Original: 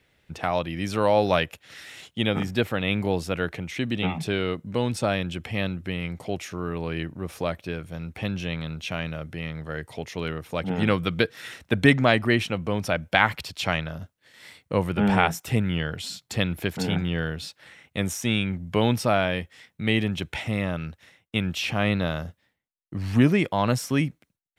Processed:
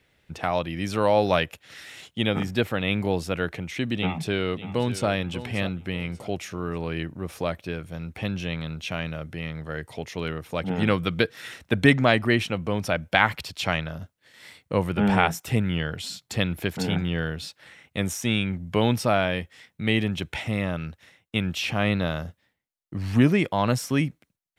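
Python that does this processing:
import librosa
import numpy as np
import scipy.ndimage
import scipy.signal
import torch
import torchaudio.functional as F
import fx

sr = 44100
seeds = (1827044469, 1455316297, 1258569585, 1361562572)

y = fx.echo_throw(x, sr, start_s=3.94, length_s=1.15, ms=590, feedback_pct=35, wet_db=-13.0)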